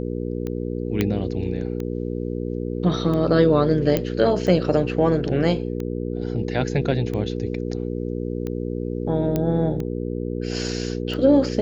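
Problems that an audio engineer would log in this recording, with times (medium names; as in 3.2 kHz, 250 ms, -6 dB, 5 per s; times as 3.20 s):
hum 60 Hz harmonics 8 -27 dBFS
tick 45 rpm -18 dBFS
1.01 s: pop -8 dBFS
3.97 s: pop -8 dBFS
9.36 s: pop -10 dBFS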